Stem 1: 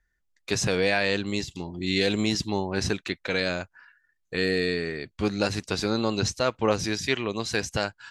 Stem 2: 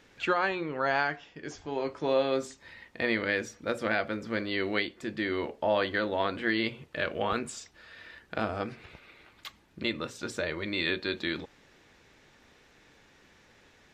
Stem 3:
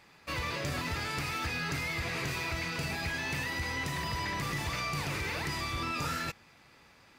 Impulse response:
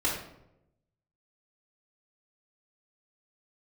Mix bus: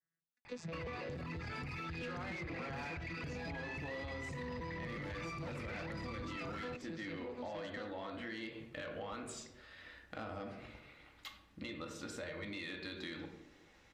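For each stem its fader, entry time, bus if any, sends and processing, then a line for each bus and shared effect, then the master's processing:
-12.0 dB, 0.00 s, no send, vocoder on a broken chord bare fifth, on E3, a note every 287 ms
-8.0 dB, 1.80 s, send -10.5 dB, peak limiter -21.5 dBFS, peak gain reduction 7.5 dB
+1.5 dB, 0.45 s, no send, resonances exaggerated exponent 2; compression, threshold -35 dBFS, peak gain reduction 5 dB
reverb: on, RT60 0.85 s, pre-delay 4 ms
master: saturation -29 dBFS, distortion -16 dB; compression, threshold -41 dBFS, peak gain reduction 8.5 dB

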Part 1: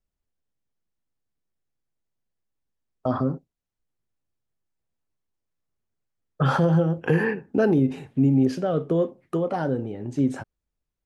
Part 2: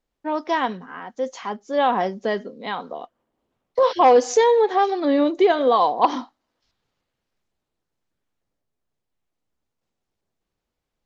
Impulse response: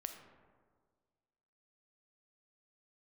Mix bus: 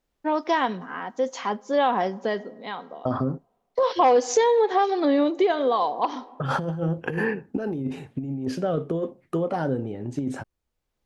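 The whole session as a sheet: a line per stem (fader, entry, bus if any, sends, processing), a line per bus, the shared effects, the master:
-2.0 dB, 0.00 s, no send, compressor with a negative ratio -22 dBFS, ratio -0.5
+1.5 dB, 0.00 s, send -16 dB, auto duck -13 dB, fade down 1.20 s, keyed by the first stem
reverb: on, RT60 1.7 s, pre-delay 4 ms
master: compression 2:1, threshold -20 dBFS, peak gain reduction 7 dB

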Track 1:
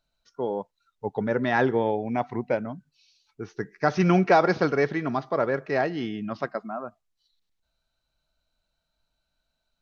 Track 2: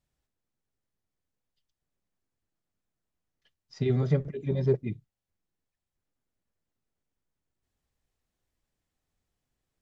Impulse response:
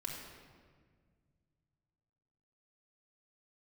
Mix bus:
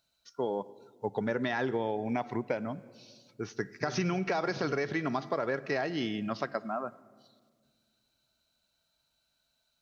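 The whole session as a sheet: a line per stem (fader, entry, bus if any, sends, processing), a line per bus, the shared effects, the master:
-2.0 dB, 0.00 s, send -16.5 dB, high-pass 80 Hz; treble shelf 2.8 kHz +9.5 dB; peak limiter -13.5 dBFS, peak gain reduction 9 dB
-16.5 dB, 0.00 s, no send, none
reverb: on, RT60 1.7 s, pre-delay 3 ms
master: compression 6:1, threshold -27 dBFS, peak gain reduction 7.5 dB

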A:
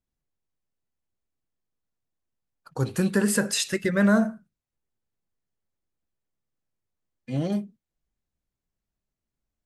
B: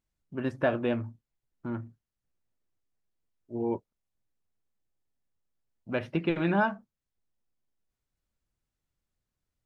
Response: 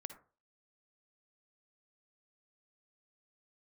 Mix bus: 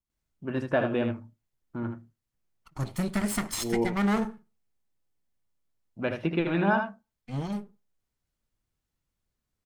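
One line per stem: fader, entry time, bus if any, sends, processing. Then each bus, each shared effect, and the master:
-6.0 dB, 0.00 s, send -13.5 dB, no echo send, comb filter that takes the minimum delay 0.93 ms
-0.5 dB, 0.10 s, send -12.5 dB, echo send -5.5 dB, none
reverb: on, RT60 0.40 s, pre-delay 47 ms
echo: delay 77 ms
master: none

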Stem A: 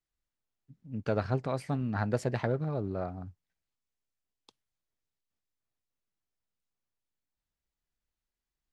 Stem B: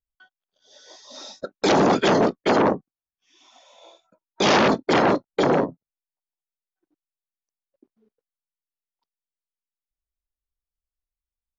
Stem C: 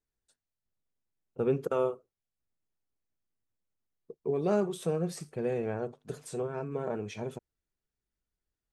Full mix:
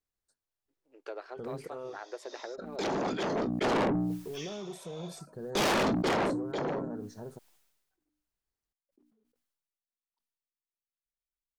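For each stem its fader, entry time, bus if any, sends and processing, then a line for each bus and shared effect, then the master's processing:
-3.0 dB, 0.00 s, no send, compression, threshold -30 dBFS, peak gain reduction 7.5 dB; elliptic high-pass 340 Hz, stop band 40 dB
3.27 s -12.5 dB -> 3.79 s -0.5 dB -> 5.97 s -0.5 dB -> 6.55 s -12.5 dB, 1.15 s, no send, hum notches 60/120/180/240/300 Hz; decay stretcher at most 44 dB/s
-4.5 dB, 0.00 s, no send, elliptic band-stop 1.7–4.1 kHz; peak limiter -27.5 dBFS, peak gain reduction 10.5 dB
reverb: none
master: saturation -25 dBFS, distortion -6 dB

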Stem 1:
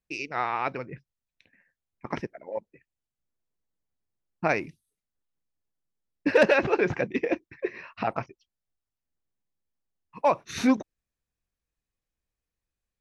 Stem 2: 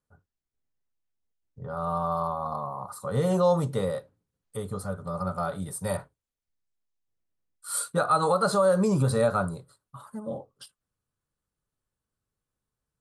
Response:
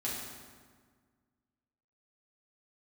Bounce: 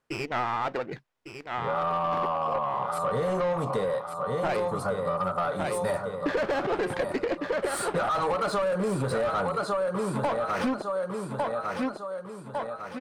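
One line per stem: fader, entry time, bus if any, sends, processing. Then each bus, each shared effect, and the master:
-2.0 dB, 0.00 s, no send, echo send -10.5 dB, median filter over 5 samples; sliding maximum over 9 samples
-0.5 dB, 0.00 s, no send, echo send -9 dB, none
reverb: none
echo: feedback delay 1152 ms, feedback 41%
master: overdrive pedal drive 21 dB, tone 1.7 kHz, clips at -10 dBFS; compression, threshold -25 dBFS, peak gain reduction 10 dB

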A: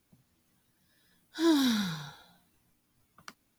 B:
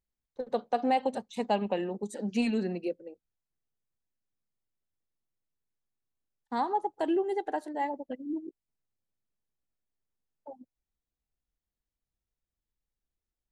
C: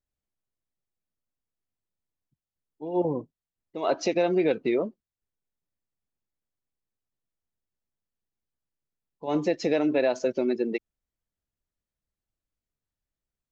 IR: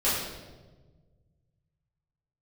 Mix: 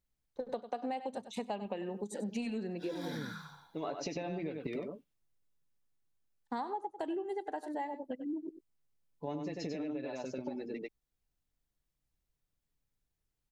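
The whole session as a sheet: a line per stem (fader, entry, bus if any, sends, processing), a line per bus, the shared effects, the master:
-14.0 dB, 1.45 s, no send, echo send -7 dB, sweeping bell 0.43 Hz 980–2900 Hz +12 dB
+1.5 dB, 0.00 s, no send, echo send -14 dB, none
-6.5 dB, 0.00 s, no send, echo send -6.5 dB, tone controls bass +8 dB, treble +1 dB; comb 6.9 ms, depth 62%; compression, threshold -21 dBFS, peak gain reduction 7 dB; auto duck -10 dB, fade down 1.15 s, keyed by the second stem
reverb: none
echo: delay 96 ms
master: compression 6:1, threshold -35 dBFS, peak gain reduction 14.5 dB

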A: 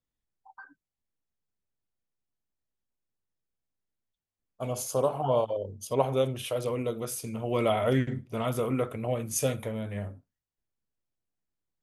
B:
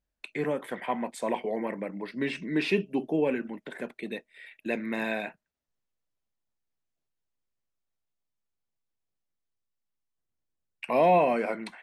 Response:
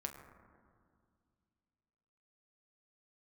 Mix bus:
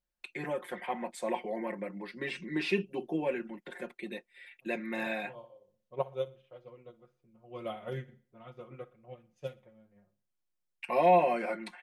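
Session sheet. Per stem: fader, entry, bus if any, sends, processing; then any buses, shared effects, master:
-9.0 dB, 0.00 s, no send, echo send -20 dB, level-controlled noise filter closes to 500 Hz, open at -21.5 dBFS; peaking EQ 8.9 kHz -8 dB 0.77 oct; upward expansion 2.5:1, over -34 dBFS; auto duck -12 dB, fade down 1.00 s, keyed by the second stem
-5.5 dB, 0.00 s, no send, no echo send, peaking EQ 91 Hz -5.5 dB 2.5 oct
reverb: none
echo: feedback delay 60 ms, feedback 44%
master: comb 5.6 ms, depth 83%

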